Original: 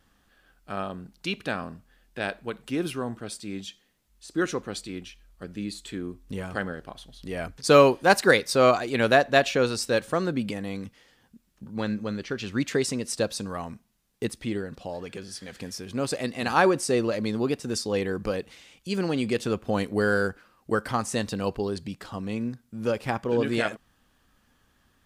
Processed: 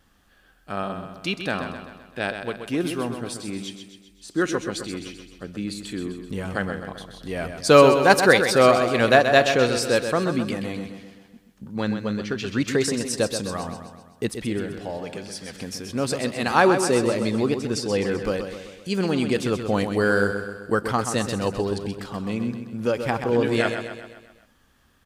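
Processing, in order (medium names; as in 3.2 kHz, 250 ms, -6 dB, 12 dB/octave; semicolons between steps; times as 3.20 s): 17.47–18.12 s: treble shelf 8.7 kHz -7.5 dB; feedback delay 129 ms, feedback 53%, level -8 dB; trim +3 dB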